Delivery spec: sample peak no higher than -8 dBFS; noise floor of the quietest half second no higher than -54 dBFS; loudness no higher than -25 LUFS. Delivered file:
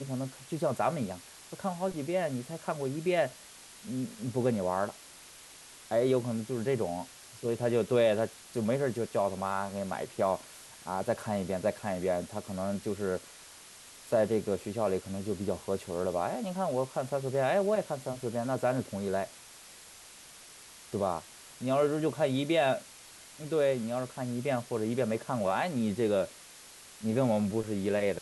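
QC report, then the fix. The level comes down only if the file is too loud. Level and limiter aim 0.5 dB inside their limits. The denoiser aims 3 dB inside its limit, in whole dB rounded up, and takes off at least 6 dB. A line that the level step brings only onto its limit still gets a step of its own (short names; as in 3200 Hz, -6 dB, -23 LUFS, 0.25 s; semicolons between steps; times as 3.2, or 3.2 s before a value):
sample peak -14.5 dBFS: OK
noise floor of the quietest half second -52 dBFS: fail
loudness -32.0 LUFS: OK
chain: denoiser 6 dB, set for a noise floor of -52 dBFS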